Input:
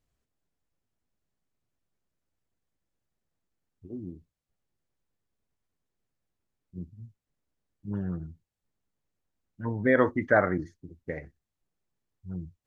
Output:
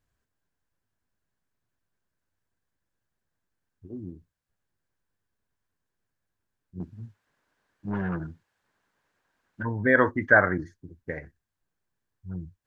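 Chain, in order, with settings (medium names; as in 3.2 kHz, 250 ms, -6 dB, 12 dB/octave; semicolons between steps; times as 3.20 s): 6.80–9.63 s: overdrive pedal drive 23 dB, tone 2.4 kHz, clips at -21.5 dBFS; graphic EQ with 31 bands 100 Hz +4 dB, 1 kHz +5 dB, 1.6 kHz +10 dB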